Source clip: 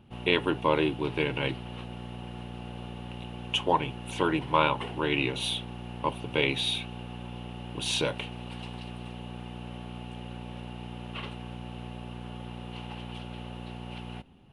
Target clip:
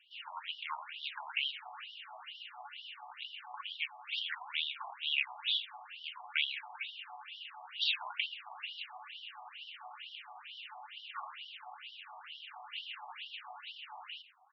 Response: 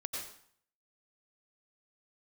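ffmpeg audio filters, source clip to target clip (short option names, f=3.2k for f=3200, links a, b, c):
-filter_complex "[0:a]acrossover=split=730|1900|3800[a][b][c][d];[a]acompressor=threshold=-40dB:ratio=4[e];[b]acompressor=threshold=-40dB:ratio=4[f];[c]acompressor=threshold=-39dB:ratio=4[g];[d]acompressor=threshold=-45dB:ratio=4[h];[e][f][g][h]amix=inputs=4:normalize=0,tiltshelf=f=970:g=-3,bandreject=f=106.1:t=h:w=4,bandreject=f=212.2:t=h:w=4,bandreject=f=318.3:t=h:w=4,bandreject=f=424.4:t=h:w=4,bandreject=f=530.5:t=h:w=4,bandreject=f=636.6:t=h:w=4,bandreject=f=742.7:t=h:w=4,bandreject=f=848.8:t=h:w=4,bandreject=f=954.9:t=h:w=4,bandreject=f=1.061k:t=h:w=4,bandreject=f=1.1671k:t=h:w=4,bandreject=f=1.2732k:t=h:w=4,bandreject=f=1.3793k:t=h:w=4,bandreject=f=1.4854k:t=h:w=4,bandreject=f=1.5915k:t=h:w=4,bandreject=f=1.6976k:t=h:w=4,flanger=delay=3.4:depth=3.3:regen=52:speed=1.1:shape=sinusoidal,asplit=2[i][j];[j]adelay=116.6,volume=-16dB,highshelf=f=4k:g=-2.62[k];[i][k]amix=inputs=2:normalize=0,afftfilt=real='re*between(b*sr/1024,870*pow(4100/870,0.5+0.5*sin(2*PI*2.2*pts/sr))/1.41,870*pow(4100/870,0.5+0.5*sin(2*PI*2.2*pts/sr))*1.41)':imag='im*between(b*sr/1024,870*pow(4100/870,0.5+0.5*sin(2*PI*2.2*pts/sr))/1.41,870*pow(4100/870,0.5+0.5*sin(2*PI*2.2*pts/sr))*1.41)':win_size=1024:overlap=0.75,volume=8dB"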